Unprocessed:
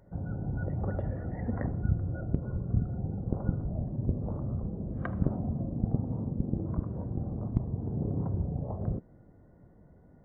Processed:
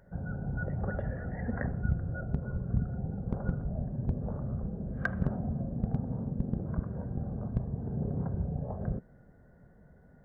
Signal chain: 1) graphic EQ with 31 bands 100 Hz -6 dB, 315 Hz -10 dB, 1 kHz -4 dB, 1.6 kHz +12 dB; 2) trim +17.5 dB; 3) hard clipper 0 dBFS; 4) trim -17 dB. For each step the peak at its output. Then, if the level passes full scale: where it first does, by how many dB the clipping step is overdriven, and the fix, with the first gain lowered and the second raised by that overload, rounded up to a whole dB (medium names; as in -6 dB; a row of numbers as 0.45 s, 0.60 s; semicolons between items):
-13.5 dBFS, +4.0 dBFS, 0.0 dBFS, -17.0 dBFS; step 2, 4.0 dB; step 2 +13.5 dB, step 4 -13 dB